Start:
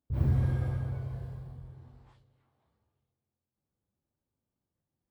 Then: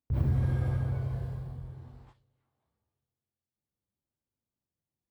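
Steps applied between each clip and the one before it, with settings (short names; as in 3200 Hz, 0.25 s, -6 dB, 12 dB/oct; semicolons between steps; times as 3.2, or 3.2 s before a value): gate -57 dBFS, range -11 dB; compressor 2.5:1, threshold -30 dBFS, peak gain reduction 6.5 dB; gain +4.5 dB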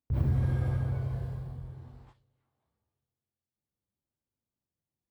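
nothing audible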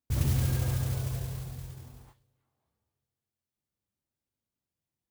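modulation noise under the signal 14 dB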